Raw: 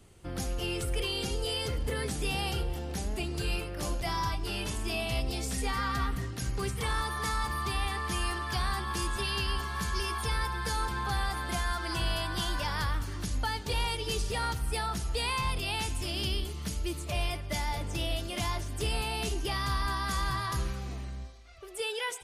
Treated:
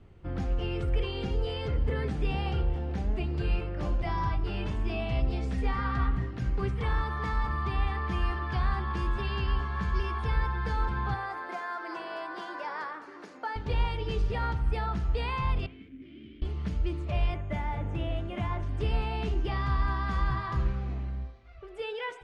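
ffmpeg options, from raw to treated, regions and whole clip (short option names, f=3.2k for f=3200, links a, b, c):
-filter_complex "[0:a]asettb=1/sr,asplit=3[a][b][c];[a]atrim=end=11.144[d];[b]atrim=start=11.14:end=13.56,asetpts=PTS-STARTPTS,afade=t=in:d=0.004:c=qsin,afade=t=out:st=2.416:d=0.004:c=qsin,highpass=f=340:w=0.5412,highpass=f=340:w=1.3066,equalizer=f=3.2k:w=2.1:g=-8[e];[c]atrim=start=13.556[f];[d][e]acrossfade=d=0.004:c1=hsin:c2=qsin[g];[g][f]acrossfade=d=0.004:c1=qsin:c2=hsin,asettb=1/sr,asplit=3[h][i][j];[h]atrim=end=15.664[k];[i]atrim=start=15.66:end=16.42,asetpts=PTS-STARTPTS,afade=t=in:d=0.004:c=qsin,afade=t=out:st=0.756:d=0.004:c=qsin,equalizer=f=4.9k:t=o:w=2.4:g=-13,acrusher=bits=5:mix=0:aa=0.5,asplit=3[l][m][n];[l]bandpass=f=270:t=q:w=8,volume=0dB[o];[m]bandpass=f=2.29k:t=q:w=8,volume=-6dB[p];[n]bandpass=f=3.01k:t=q:w=8,volume=-9dB[q];[o][p][q]amix=inputs=3:normalize=0[r];[j]atrim=start=16.416[s];[k][r]acrossfade=d=0.004:c1=hsin:c2=qsin[t];[t][s]acrossfade=d=0.004:c1=qsin:c2=hsin,asettb=1/sr,asplit=3[u][v][w];[u]atrim=end=17.344[x];[v]atrim=start=17.34:end=18.63,asetpts=PTS-STARTPTS,afade=t=in:d=0.004:c=qsin,afade=t=out:st=1.286:d=0.004:c=qsin,highpass=55,equalizer=f=4.8k:t=o:w=0.76:g=-12.5,aeval=exprs='val(0)+0.000794*sin(2*PI*6700*n/s)':c=same[y];[w]atrim=start=18.626[z];[x][y]acrossfade=d=0.004:c1=hsin:c2=qsin[aa];[aa][z]acrossfade=d=0.004:c1=qsin:c2=hsin,lowpass=2.2k,lowshelf=f=220:g=6,bandreject=f=57.44:t=h:w=4,bandreject=f=114.88:t=h:w=4,bandreject=f=172.32:t=h:w=4,bandreject=f=229.76:t=h:w=4,bandreject=f=287.2:t=h:w=4,bandreject=f=344.64:t=h:w=4,bandreject=f=402.08:t=h:w=4,bandreject=f=459.52:t=h:w=4,bandreject=f=516.96:t=h:w=4,bandreject=f=574.4:t=h:w=4,bandreject=f=631.84:t=h:w=4,bandreject=f=689.28:t=h:w=4,bandreject=f=746.72:t=h:w=4,bandreject=f=804.16:t=h:w=4,bandreject=f=861.6:t=h:w=4,bandreject=f=919.04:t=h:w=4,bandreject=f=976.48:t=h:w=4,bandreject=f=1.03392k:t=h:w=4,bandreject=f=1.09136k:t=h:w=4,bandreject=f=1.1488k:t=h:w=4,bandreject=f=1.20624k:t=h:w=4,bandreject=f=1.26368k:t=h:w=4,bandreject=f=1.32112k:t=h:w=4,bandreject=f=1.37856k:t=h:w=4,bandreject=f=1.436k:t=h:w=4,bandreject=f=1.49344k:t=h:w=4,bandreject=f=1.55088k:t=h:w=4,bandreject=f=1.60832k:t=h:w=4,bandreject=f=1.66576k:t=h:w=4,bandreject=f=1.7232k:t=h:w=4,bandreject=f=1.78064k:t=h:w=4,bandreject=f=1.83808k:t=h:w=4,bandreject=f=1.89552k:t=h:w=4,bandreject=f=1.95296k:t=h:w=4"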